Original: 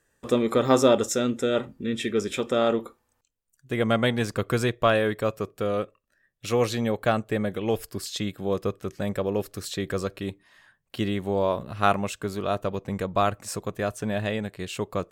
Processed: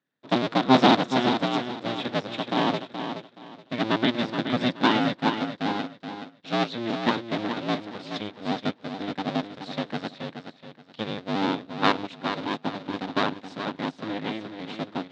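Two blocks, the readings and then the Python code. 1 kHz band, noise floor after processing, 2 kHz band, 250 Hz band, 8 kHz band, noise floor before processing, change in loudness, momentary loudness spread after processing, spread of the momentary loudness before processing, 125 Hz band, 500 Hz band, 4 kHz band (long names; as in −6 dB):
+2.5 dB, −56 dBFS, +2.0 dB, +2.0 dB, below −10 dB, −74 dBFS, −0.5 dB, 13 LU, 10 LU, −4.0 dB, −5.5 dB, +4.5 dB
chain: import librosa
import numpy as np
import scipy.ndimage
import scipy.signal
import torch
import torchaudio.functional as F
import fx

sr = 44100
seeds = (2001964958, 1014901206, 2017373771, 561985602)

p1 = fx.cycle_switch(x, sr, every=2, mode='inverted')
p2 = fx.cabinet(p1, sr, low_hz=130.0, low_slope=24, high_hz=4700.0, hz=(150.0, 260.0, 3700.0), db=(3, 8, 8))
p3 = p2 + fx.echo_feedback(p2, sr, ms=424, feedback_pct=40, wet_db=-5.5, dry=0)
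y = fx.upward_expand(p3, sr, threshold_db=-41.0, expansion=1.5)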